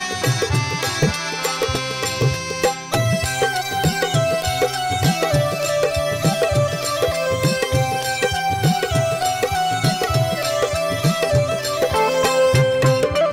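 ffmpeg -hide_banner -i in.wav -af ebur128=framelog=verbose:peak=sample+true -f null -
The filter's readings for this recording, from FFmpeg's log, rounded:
Integrated loudness:
  I:         -19.1 LUFS
  Threshold: -29.1 LUFS
Loudness range:
  LRA:         2.0 LU
  Threshold: -39.3 LUFS
  LRA low:   -20.2 LUFS
  LRA high:  -18.2 LUFS
Sample peak:
  Peak:       -8.4 dBFS
True peak:
  Peak:       -8.2 dBFS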